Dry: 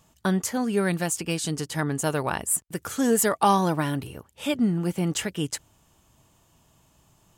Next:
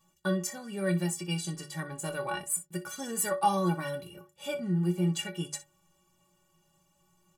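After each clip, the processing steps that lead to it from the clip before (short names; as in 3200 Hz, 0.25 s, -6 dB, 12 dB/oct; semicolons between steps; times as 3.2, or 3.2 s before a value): notches 50/100/150 Hz; metallic resonator 170 Hz, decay 0.29 s, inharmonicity 0.03; on a send: early reflections 26 ms -11.5 dB, 61 ms -16 dB; on the sum: gain +4.5 dB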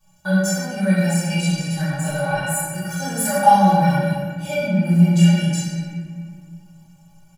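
comb 1.3 ms, depth 85%; reverb RT60 1.8 s, pre-delay 3 ms, DRR -12 dB; gain -2 dB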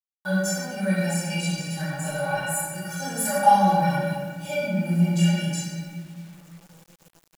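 low shelf 130 Hz -10 dB; bit-crush 8-bit; gain -3.5 dB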